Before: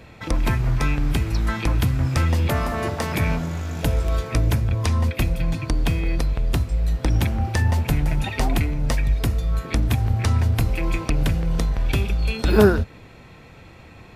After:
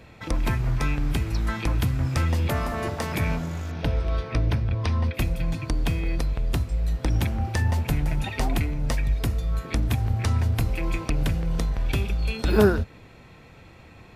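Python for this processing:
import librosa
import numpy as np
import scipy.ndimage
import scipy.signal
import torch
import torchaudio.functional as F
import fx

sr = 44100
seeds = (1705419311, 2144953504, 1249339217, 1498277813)

y = fx.dmg_noise_colour(x, sr, seeds[0], colour='brown', level_db=-50.0, at=(1.8, 3.14), fade=0.02)
y = fx.savgol(y, sr, points=15, at=(3.71, 5.14))
y = y * 10.0 ** (-3.5 / 20.0)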